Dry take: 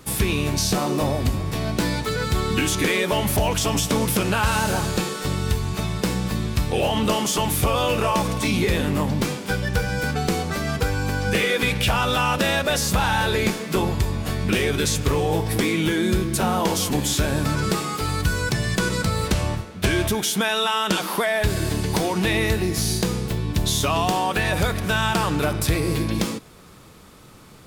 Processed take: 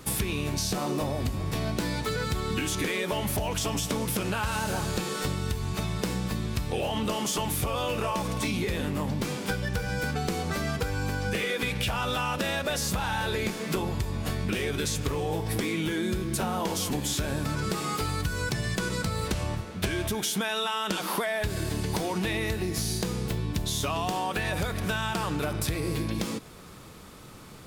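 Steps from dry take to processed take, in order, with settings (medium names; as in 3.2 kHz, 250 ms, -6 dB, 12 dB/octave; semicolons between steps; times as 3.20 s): compression, threshold -26 dBFS, peak gain reduction 10.5 dB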